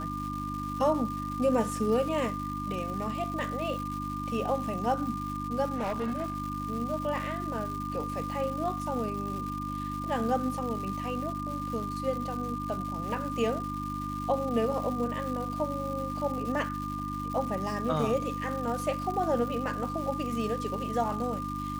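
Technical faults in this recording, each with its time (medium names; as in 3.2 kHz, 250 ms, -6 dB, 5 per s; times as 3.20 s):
crackle 400 per s -37 dBFS
hum 50 Hz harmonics 6 -37 dBFS
whine 1.2 kHz -35 dBFS
5.75–6.36 s: clipped -27.5 dBFS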